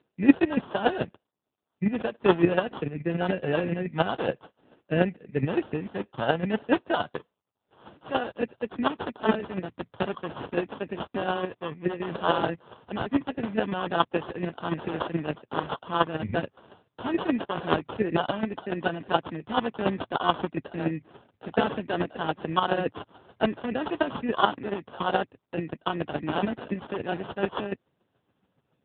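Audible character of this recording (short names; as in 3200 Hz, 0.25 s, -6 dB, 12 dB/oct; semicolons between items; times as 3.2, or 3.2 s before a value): aliases and images of a low sample rate 2200 Hz, jitter 0%; chopped level 7 Hz, depth 60%, duty 15%; AMR-NB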